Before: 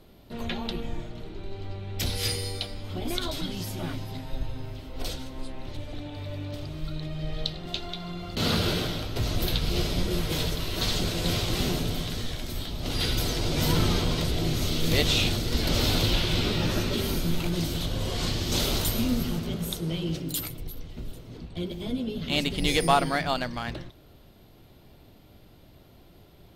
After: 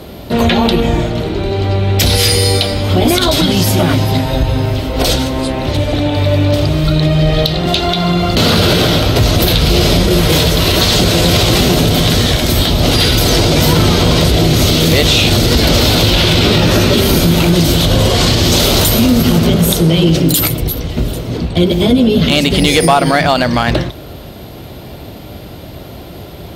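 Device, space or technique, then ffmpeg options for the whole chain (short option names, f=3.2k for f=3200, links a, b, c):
mastering chain: -af "highpass=f=42:w=0.5412,highpass=f=42:w=1.3066,equalizer=f=590:t=o:w=0.74:g=3,acompressor=threshold=-28dB:ratio=2.5,asoftclip=type=tanh:threshold=-16.5dB,asoftclip=type=hard:threshold=-21dB,alimiter=level_in=24.5dB:limit=-1dB:release=50:level=0:latency=1,volume=-1dB"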